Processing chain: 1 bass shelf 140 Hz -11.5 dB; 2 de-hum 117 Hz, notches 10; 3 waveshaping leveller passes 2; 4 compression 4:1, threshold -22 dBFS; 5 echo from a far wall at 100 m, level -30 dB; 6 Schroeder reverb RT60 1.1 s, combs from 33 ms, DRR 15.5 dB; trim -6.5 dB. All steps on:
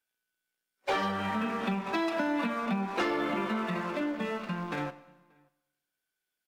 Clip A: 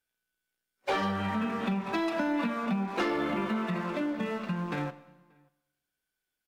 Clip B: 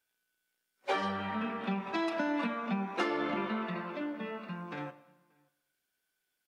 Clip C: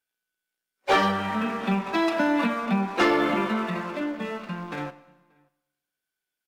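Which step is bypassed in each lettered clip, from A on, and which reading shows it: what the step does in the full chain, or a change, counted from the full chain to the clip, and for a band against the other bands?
1, 125 Hz band +4.0 dB; 3, crest factor change +5.0 dB; 4, momentary loudness spread change +7 LU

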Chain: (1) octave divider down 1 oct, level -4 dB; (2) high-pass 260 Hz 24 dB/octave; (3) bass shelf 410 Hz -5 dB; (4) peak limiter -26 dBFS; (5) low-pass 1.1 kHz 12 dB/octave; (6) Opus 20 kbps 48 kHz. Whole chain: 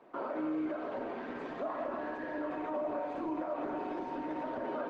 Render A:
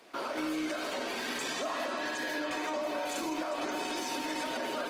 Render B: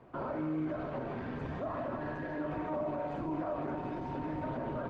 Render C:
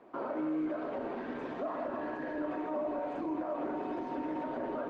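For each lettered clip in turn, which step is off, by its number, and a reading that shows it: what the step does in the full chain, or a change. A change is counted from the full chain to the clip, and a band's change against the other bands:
5, 4 kHz band +21.5 dB; 2, 125 Hz band +16.5 dB; 3, 125 Hz band +2.0 dB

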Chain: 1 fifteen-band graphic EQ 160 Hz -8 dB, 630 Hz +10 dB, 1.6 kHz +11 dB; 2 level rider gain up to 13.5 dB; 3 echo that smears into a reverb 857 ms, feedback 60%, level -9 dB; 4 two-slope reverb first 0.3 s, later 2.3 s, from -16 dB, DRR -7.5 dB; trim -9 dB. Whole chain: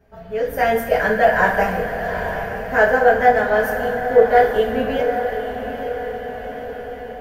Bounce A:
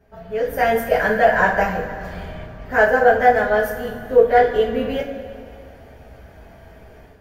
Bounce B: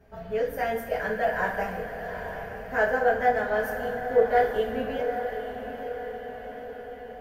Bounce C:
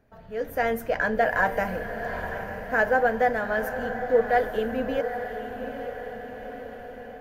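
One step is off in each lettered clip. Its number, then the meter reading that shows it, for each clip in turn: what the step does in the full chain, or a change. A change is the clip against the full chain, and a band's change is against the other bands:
3, momentary loudness spread change +2 LU; 2, loudness change -9.5 LU; 4, echo-to-direct 8.5 dB to -7.0 dB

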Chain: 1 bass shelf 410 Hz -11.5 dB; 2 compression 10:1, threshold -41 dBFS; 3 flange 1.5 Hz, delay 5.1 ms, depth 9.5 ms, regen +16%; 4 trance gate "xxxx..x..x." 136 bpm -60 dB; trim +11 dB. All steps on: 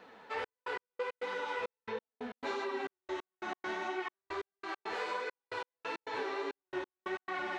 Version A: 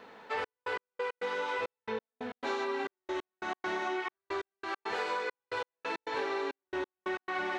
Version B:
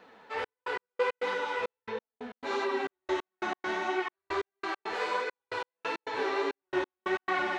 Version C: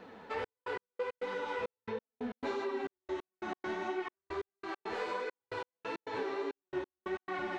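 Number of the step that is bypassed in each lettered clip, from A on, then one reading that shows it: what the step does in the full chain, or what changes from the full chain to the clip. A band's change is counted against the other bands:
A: 3, loudness change +3.5 LU; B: 2, mean gain reduction 5.5 dB; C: 1, 250 Hz band +5.0 dB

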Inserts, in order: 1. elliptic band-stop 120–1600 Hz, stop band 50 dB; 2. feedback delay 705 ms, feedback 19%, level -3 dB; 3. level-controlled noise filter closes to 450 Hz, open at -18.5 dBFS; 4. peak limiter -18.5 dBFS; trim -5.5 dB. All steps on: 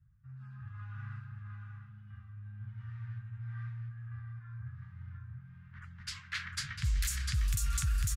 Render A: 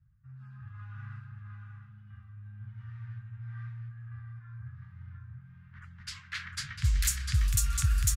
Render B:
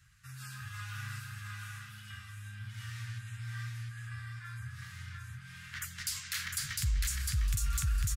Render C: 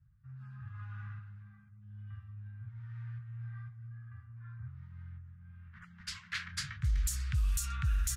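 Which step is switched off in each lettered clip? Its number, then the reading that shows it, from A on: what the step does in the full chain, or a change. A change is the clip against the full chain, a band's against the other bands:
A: 4, crest factor change +7.0 dB; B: 3, 250 Hz band -3.0 dB; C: 2, momentary loudness spread change +2 LU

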